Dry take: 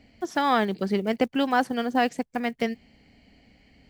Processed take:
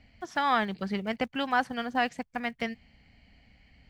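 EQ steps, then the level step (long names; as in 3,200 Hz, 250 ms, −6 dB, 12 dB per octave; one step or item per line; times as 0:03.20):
low-pass filter 2,200 Hz 6 dB per octave
parametric band 360 Hz −14 dB 2 octaves
+3.0 dB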